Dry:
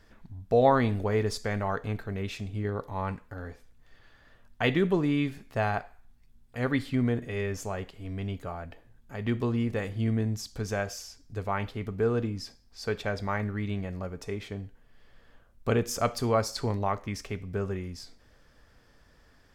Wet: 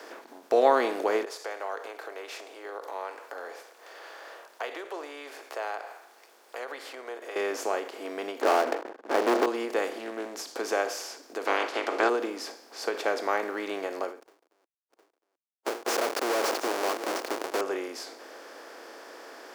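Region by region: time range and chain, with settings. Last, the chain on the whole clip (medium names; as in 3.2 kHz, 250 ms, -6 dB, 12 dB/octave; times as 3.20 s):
1.25–7.36 s: compression 2:1, threshold -48 dBFS + high-pass 480 Hz 24 dB/octave
8.41–9.46 s: low-pass 1.3 kHz + waveshaping leveller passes 5
9.98–10.42 s: compression 4:1, threshold -31 dBFS + loudspeaker Doppler distortion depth 0.24 ms
11.45–12.08 s: spectral peaks clipped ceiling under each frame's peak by 28 dB + low-pass 4.7 kHz
14.20–17.61 s: Schmitt trigger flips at -36 dBFS + delay 710 ms -16 dB
whole clip: spectral levelling over time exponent 0.6; elliptic high-pass 310 Hz, stop band 70 dB; endings held to a fixed fall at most 140 dB/s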